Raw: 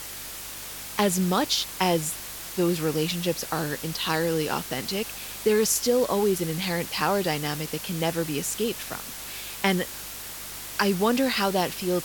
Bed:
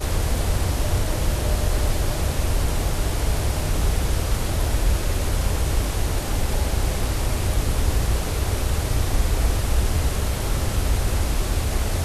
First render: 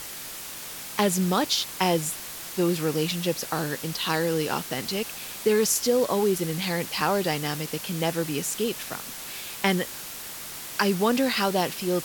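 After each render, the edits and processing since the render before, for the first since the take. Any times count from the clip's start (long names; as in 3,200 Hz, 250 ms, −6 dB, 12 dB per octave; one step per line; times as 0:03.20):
hum removal 50 Hz, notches 2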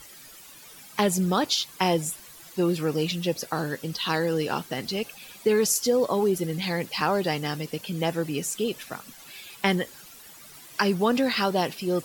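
broadband denoise 13 dB, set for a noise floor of −38 dBFS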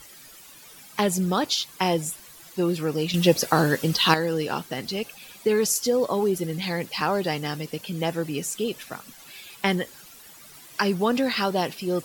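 0:03.14–0:04.14: clip gain +8.5 dB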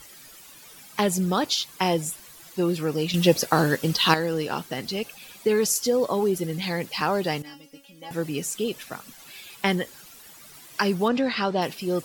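0:03.38–0:04.58: mu-law and A-law mismatch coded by A
0:07.42–0:08.11: tuned comb filter 280 Hz, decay 0.18 s, mix 100%
0:11.08–0:11.62: high-frequency loss of the air 99 metres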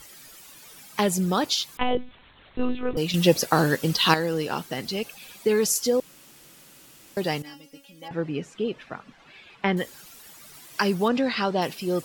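0:01.77–0:02.97: one-pitch LPC vocoder at 8 kHz 250 Hz
0:06.00–0:07.17: fill with room tone
0:08.08–0:09.77: low-pass filter 2,400 Hz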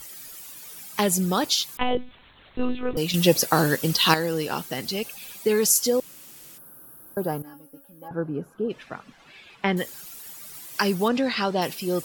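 0:06.58–0:08.70: gain on a spectral selection 1,700–10,000 Hz −20 dB
high-shelf EQ 7,800 Hz +9.5 dB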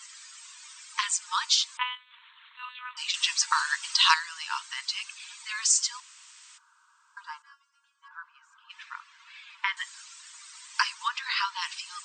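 brick-wall band-pass 900–8,700 Hz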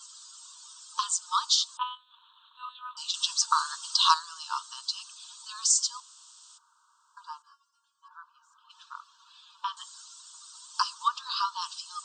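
Chebyshev band-stop filter 1,200–3,600 Hz, order 2
dynamic equaliser 1,200 Hz, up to +6 dB, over −49 dBFS, Q 6.7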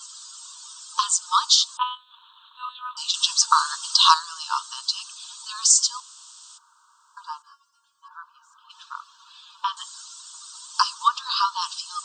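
level +7 dB
brickwall limiter −1 dBFS, peak gain reduction 1.5 dB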